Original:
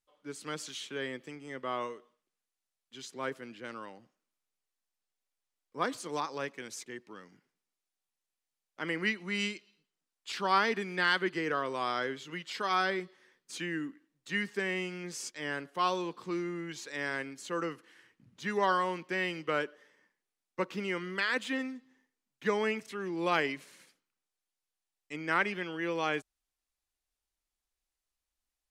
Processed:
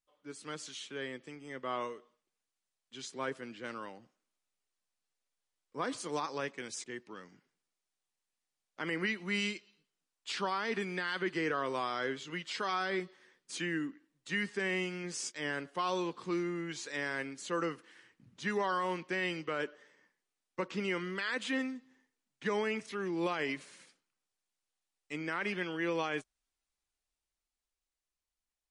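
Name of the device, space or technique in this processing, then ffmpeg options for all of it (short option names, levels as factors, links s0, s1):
low-bitrate web radio: -af "dynaudnorm=f=170:g=21:m=1.68,alimiter=limit=0.1:level=0:latency=1:release=48,volume=0.668" -ar 24000 -c:a libmp3lame -b:a 40k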